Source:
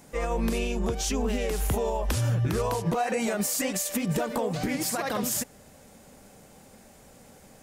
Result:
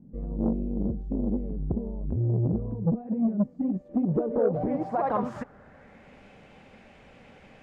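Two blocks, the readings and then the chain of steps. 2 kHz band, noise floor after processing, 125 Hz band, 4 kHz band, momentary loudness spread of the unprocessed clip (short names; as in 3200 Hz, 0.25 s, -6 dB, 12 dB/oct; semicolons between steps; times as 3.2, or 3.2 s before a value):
-14.5 dB, -54 dBFS, +0.5 dB, under -25 dB, 3 LU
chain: low-pass sweep 220 Hz -> 2600 Hz, 3.56–6.2; core saturation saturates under 300 Hz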